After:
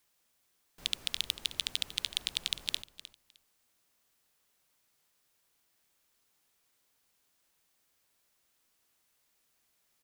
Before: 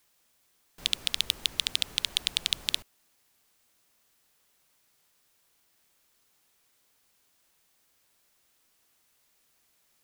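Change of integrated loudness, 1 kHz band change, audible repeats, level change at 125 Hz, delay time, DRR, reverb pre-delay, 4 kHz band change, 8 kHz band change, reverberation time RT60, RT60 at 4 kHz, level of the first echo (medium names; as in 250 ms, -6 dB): -5.5 dB, -5.5 dB, 2, -5.5 dB, 307 ms, no reverb, no reverb, -5.5 dB, -5.5 dB, no reverb, no reverb, -15.0 dB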